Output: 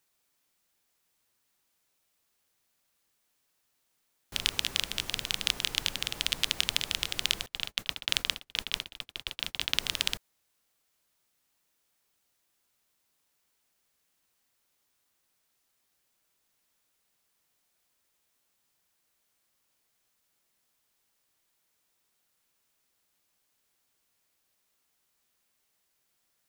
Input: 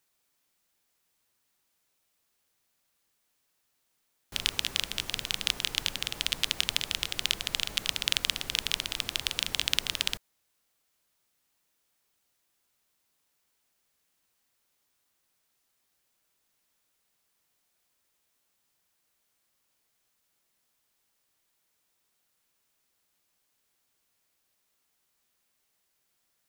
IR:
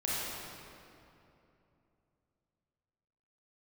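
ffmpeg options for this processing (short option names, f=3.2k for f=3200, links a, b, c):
-filter_complex "[0:a]asettb=1/sr,asplit=3[a][b][c];[a]atrim=end=7.464[d];[b]atrim=start=7.46:end=9.8,asetpts=PTS-STARTPTS,afade=t=in:d=0.004:c=qsin,afade=t=out:st=2.336:d=0.004:c=qsin,agate=range=-39dB:threshold=-33dB:ratio=16:detection=peak[e];[c]atrim=start=9.796[f];[d][e]acrossfade=d=0.004:c1=hsin:c2=qsin[g];[g][f]acrossfade=d=0.004:c1=qsin:c2=hsin"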